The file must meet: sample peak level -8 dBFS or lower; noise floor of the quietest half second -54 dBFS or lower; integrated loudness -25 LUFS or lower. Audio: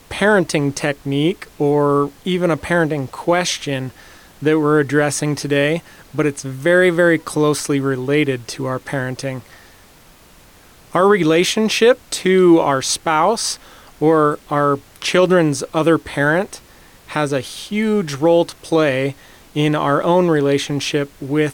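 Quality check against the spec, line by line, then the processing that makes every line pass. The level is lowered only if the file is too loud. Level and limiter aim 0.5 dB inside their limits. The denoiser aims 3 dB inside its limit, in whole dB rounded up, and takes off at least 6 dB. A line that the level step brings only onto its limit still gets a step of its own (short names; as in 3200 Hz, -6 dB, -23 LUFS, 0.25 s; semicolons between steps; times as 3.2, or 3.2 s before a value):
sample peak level -3.5 dBFS: fail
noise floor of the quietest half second -47 dBFS: fail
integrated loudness -17.0 LUFS: fail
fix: gain -8.5 dB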